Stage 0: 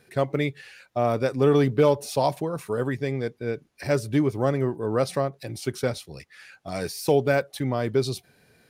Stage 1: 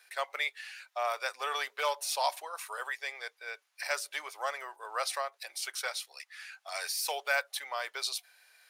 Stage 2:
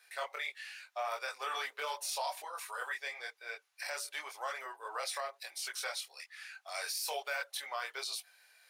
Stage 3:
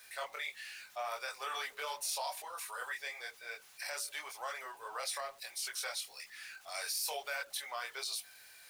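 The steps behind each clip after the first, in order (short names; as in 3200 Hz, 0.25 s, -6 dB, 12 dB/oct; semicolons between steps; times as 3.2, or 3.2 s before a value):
Bessel high-pass 1200 Hz, order 6; gain +2 dB
chorus voices 4, 0.77 Hz, delay 23 ms, depth 3.7 ms; limiter -28.5 dBFS, peak gain reduction 8 dB; gain +1 dB
zero-crossing step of -54 dBFS; high shelf 4900 Hz +5.5 dB; gain -3 dB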